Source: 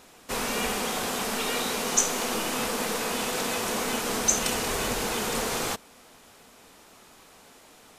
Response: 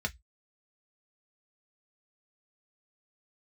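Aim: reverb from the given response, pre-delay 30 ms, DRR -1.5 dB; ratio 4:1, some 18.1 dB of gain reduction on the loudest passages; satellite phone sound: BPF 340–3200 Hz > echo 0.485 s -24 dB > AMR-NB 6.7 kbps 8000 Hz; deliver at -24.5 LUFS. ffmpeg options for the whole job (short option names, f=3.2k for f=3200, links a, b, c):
-filter_complex "[0:a]acompressor=threshold=-41dB:ratio=4,asplit=2[a][b];[1:a]atrim=start_sample=2205,adelay=30[c];[b][c]afir=irnorm=-1:irlink=0,volume=-3dB[d];[a][d]amix=inputs=2:normalize=0,highpass=340,lowpass=3.2k,aecho=1:1:485:0.0631,volume=20dB" -ar 8000 -c:a libopencore_amrnb -b:a 6700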